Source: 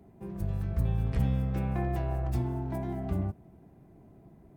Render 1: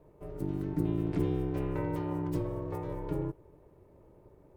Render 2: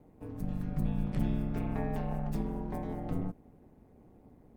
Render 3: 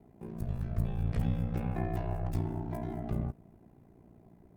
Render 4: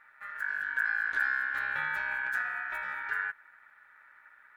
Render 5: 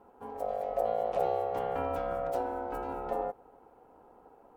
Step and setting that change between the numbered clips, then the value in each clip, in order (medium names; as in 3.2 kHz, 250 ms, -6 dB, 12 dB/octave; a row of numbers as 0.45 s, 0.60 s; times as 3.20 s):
ring modulator, frequency: 230 Hz, 86 Hz, 29 Hz, 1.6 kHz, 620 Hz